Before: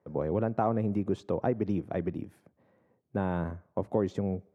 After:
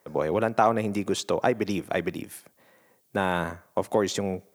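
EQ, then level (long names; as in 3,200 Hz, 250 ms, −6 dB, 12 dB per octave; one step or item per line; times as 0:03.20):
spectral tilt +3.5 dB per octave
high-shelf EQ 2,200 Hz +7.5 dB
+8.5 dB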